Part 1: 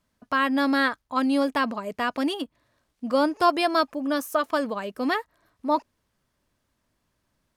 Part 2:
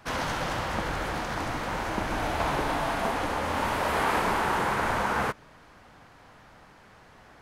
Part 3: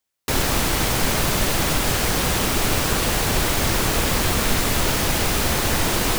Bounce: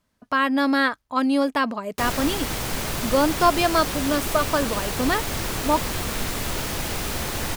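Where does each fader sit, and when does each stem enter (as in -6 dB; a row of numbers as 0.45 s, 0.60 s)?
+2.0 dB, mute, -7.0 dB; 0.00 s, mute, 1.70 s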